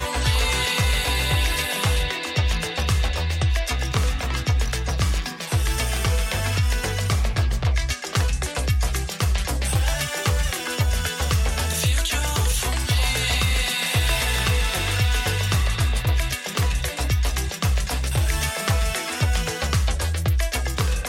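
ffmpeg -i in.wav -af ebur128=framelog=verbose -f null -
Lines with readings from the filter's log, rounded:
Integrated loudness:
  I:         -22.8 LUFS
  Threshold: -32.8 LUFS
Loudness range:
  LRA:         2.3 LU
  Threshold: -42.8 LUFS
  LRA low:   -23.7 LUFS
  LRA high:  -21.4 LUFS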